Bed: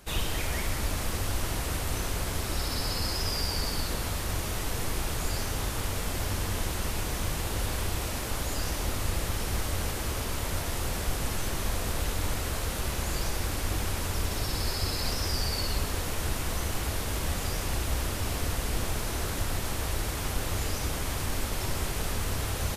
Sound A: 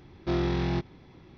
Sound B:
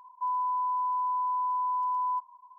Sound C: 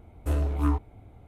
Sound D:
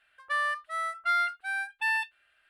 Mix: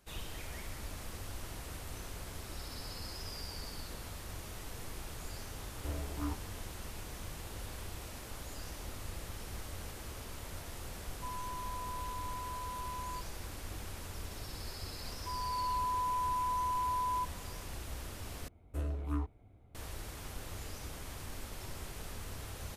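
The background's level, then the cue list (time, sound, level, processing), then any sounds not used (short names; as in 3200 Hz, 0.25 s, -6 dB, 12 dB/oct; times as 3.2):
bed -13.5 dB
5.58 add C -11.5 dB + HPF 71 Hz
11.01 add B -14 dB
15.05 add B -12.5 dB + AGC gain up to 7.5 dB
18.48 replace with C -10.5 dB + bell 850 Hz -4.5 dB 0.31 oct
not used: A, D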